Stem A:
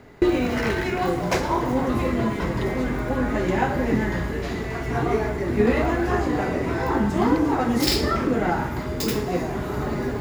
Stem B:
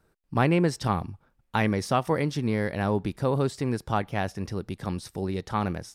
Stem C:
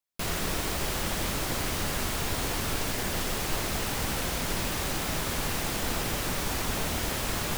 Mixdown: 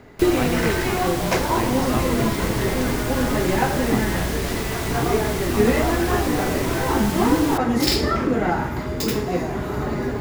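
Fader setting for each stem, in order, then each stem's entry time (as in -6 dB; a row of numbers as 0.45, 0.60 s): +1.5, -5.0, +0.5 dB; 0.00, 0.00, 0.00 s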